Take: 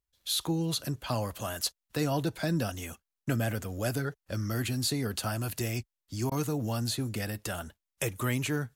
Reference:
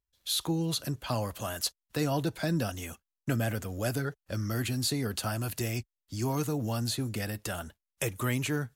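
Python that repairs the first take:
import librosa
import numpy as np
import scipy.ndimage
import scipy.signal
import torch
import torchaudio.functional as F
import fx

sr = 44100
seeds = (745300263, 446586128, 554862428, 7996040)

y = fx.fix_interpolate(x, sr, at_s=(6.3,), length_ms=14.0)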